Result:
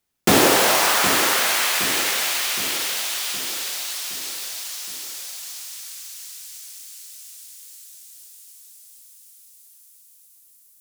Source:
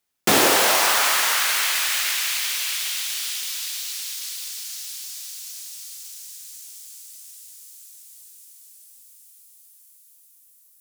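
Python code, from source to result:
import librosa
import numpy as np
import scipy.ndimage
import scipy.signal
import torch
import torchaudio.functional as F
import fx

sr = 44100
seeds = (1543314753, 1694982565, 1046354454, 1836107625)

y = fx.low_shelf(x, sr, hz=350.0, db=8.5)
y = fx.echo_feedback(y, sr, ms=767, feedback_pct=54, wet_db=-10.0)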